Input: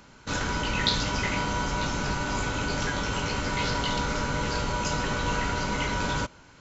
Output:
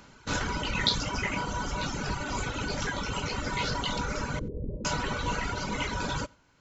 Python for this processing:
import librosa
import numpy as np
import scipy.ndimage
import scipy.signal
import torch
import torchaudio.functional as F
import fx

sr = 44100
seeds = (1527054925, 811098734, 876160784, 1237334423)

p1 = fx.steep_lowpass(x, sr, hz=530.0, slope=36, at=(4.39, 4.85))
p2 = p1 + fx.echo_single(p1, sr, ms=89, db=-19.5, dry=0)
y = fx.dereverb_blind(p2, sr, rt60_s=1.7)